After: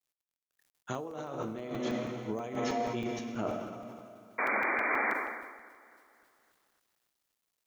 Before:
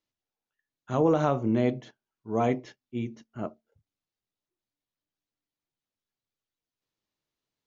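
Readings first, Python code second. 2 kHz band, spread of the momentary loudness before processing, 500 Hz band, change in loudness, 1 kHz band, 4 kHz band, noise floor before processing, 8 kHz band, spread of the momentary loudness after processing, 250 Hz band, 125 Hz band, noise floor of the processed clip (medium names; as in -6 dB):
+12.5 dB, 15 LU, -6.5 dB, -5.5 dB, -0.5 dB, +3.0 dB, under -85 dBFS, no reading, 17 LU, -7.0 dB, -10.5 dB, under -85 dBFS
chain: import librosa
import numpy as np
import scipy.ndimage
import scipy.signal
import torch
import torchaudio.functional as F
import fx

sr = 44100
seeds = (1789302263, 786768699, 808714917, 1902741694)

p1 = fx.rev_plate(x, sr, seeds[0], rt60_s=2.4, hf_ratio=1.0, predelay_ms=0, drr_db=5.5)
p2 = fx.spec_paint(p1, sr, seeds[1], shape='noise', start_s=4.38, length_s=0.76, low_hz=200.0, high_hz=2400.0, level_db=-35.0)
p3 = fx.high_shelf(p2, sr, hz=4500.0, db=8.0)
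p4 = fx.over_compress(p3, sr, threshold_db=-33.0, ratio=-1.0)
p5 = fx.highpass(p4, sr, hz=120.0, slope=6)
p6 = fx.low_shelf(p5, sr, hz=290.0, db=-5.0)
p7 = p6 + fx.echo_bbd(p6, sr, ms=277, stages=4096, feedback_pct=52, wet_db=-17.5, dry=0)
p8 = fx.quant_dither(p7, sr, seeds[2], bits=12, dither='none')
p9 = fx.buffer_crackle(p8, sr, first_s=0.63, period_s=0.16, block=128, kind='zero')
y = fx.sustainer(p9, sr, db_per_s=45.0)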